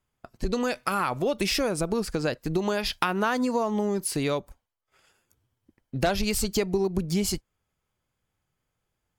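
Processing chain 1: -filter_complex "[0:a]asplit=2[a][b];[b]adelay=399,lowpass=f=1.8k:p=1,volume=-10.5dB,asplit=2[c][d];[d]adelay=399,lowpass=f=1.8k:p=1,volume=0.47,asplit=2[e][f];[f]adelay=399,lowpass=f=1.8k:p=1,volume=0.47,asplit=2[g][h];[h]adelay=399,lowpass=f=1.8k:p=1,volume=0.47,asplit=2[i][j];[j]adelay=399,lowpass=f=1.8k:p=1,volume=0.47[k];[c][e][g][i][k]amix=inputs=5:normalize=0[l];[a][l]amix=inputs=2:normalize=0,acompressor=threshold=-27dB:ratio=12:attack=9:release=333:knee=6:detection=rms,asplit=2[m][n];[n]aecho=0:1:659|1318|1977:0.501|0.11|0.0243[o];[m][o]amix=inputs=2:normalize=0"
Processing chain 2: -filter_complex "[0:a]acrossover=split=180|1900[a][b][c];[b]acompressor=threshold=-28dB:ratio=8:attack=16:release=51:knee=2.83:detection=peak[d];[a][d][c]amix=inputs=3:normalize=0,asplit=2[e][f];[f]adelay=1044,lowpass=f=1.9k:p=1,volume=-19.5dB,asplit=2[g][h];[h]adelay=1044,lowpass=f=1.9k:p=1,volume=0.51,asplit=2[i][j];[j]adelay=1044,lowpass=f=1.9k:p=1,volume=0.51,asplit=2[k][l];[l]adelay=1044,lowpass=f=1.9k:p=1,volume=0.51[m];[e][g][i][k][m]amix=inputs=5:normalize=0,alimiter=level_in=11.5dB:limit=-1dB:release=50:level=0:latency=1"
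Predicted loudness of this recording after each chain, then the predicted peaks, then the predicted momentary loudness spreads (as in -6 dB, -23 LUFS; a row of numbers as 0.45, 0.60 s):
-34.0, -17.0 LUFS; -15.5, -1.0 dBFS; 13, 21 LU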